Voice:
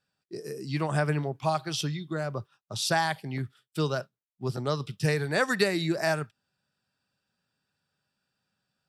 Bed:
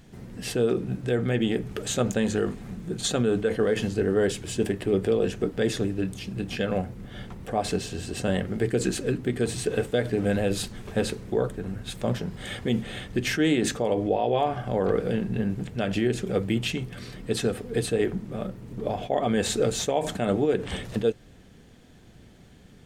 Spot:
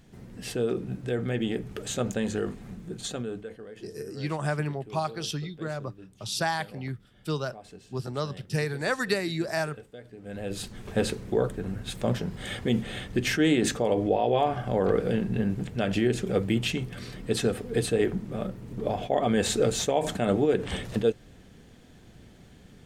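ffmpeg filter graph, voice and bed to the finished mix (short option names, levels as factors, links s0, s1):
-filter_complex "[0:a]adelay=3500,volume=0.794[s0];[1:a]volume=6.68,afade=t=out:st=2.71:d=0.9:silence=0.149624,afade=t=in:st=10.23:d=0.78:silence=0.0944061[s1];[s0][s1]amix=inputs=2:normalize=0"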